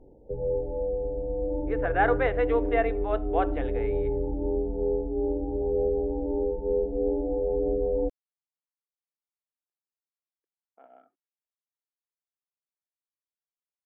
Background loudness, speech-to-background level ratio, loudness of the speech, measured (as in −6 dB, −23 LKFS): −29.0 LKFS, 1.0 dB, −28.0 LKFS